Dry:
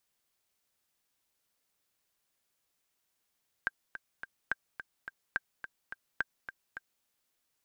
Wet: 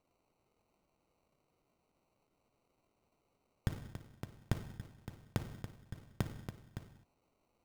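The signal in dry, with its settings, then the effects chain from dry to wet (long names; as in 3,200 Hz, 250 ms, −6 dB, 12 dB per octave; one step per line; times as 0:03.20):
click track 213 BPM, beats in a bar 3, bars 4, 1,580 Hz, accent 11 dB −16.5 dBFS
reverb whose tail is shaped and stops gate 280 ms falling, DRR 5.5 dB
sample-rate reduction 1,700 Hz, jitter 0%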